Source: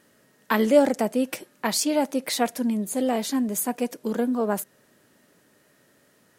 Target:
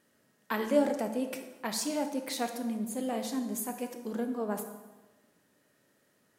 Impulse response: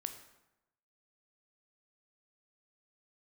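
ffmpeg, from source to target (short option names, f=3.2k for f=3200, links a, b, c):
-filter_complex "[1:a]atrim=start_sample=2205,asetrate=33957,aresample=44100[a];[0:a][a]afir=irnorm=-1:irlink=0,volume=-8.5dB"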